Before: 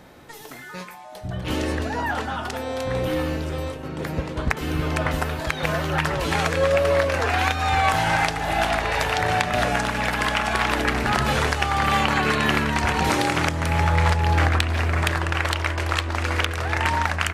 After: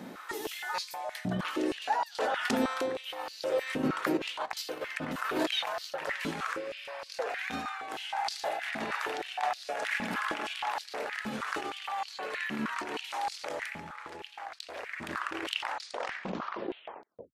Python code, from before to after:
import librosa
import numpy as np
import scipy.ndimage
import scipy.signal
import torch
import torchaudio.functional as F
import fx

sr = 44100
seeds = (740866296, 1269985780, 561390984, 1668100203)

y = fx.tape_stop_end(x, sr, length_s=1.82)
y = fx.over_compress(y, sr, threshold_db=-30.0, ratio=-1.0)
y = fx.spec_repair(y, sr, seeds[0], start_s=6.57, length_s=0.46, low_hz=1400.0, high_hz=5400.0, source='after')
y = fx.filter_held_highpass(y, sr, hz=6.4, low_hz=220.0, high_hz=4500.0)
y = F.gain(torch.from_numpy(y), -6.5).numpy()